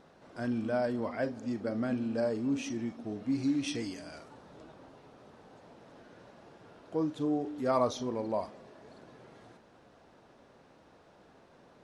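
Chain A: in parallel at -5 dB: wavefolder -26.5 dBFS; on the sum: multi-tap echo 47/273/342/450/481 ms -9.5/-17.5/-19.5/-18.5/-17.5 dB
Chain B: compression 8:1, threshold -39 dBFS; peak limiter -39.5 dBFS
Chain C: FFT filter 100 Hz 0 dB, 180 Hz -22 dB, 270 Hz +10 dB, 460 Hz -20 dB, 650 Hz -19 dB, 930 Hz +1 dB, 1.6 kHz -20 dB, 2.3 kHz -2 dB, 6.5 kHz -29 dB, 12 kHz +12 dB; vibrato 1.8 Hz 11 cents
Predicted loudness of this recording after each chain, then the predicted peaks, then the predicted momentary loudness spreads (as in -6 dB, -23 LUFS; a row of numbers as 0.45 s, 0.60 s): -29.5 LUFS, -49.0 LUFS, -31.0 LUFS; -16.0 dBFS, -39.5 dBFS, -14.5 dBFS; 19 LU, 14 LU, 16 LU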